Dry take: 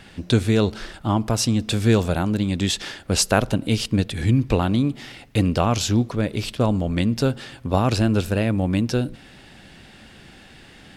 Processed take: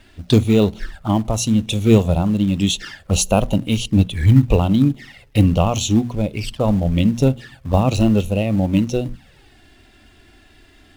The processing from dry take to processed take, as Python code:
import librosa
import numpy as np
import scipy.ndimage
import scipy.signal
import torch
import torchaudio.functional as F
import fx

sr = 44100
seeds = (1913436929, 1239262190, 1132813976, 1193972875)

p1 = fx.hum_notches(x, sr, base_hz=60, count=4)
p2 = fx.env_flanger(p1, sr, rest_ms=3.5, full_db=-20.0)
p3 = fx.low_shelf(p2, sr, hz=180.0, db=6.5)
p4 = fx.quant_companded(p3, sr, bits=4)
p5 = p3 + (p4 * librosa.db_to_amplitude(-10.0))
p6 = fx.noise_reduce_blind(p5, sr, reduce_db=7)
y = p6 * librosa.db_to_amplitude(2.0)